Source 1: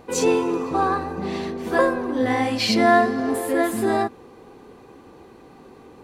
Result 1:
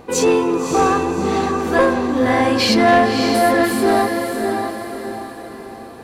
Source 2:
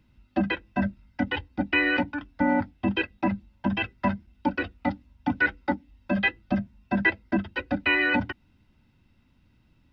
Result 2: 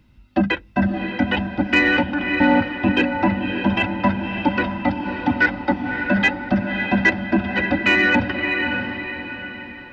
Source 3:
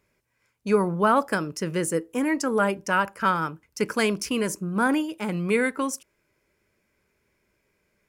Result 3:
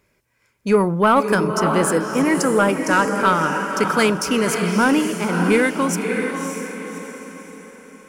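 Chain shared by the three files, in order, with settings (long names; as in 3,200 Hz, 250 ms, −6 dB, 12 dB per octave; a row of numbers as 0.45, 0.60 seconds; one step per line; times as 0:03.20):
feedback delay with all-pass diffusion 592 ms, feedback 43%, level −5.5 dB
soft clipping −11.5 dBFS
normalise the peak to −6 dBFS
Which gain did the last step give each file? +5.5, +7.0, +6.5 decibels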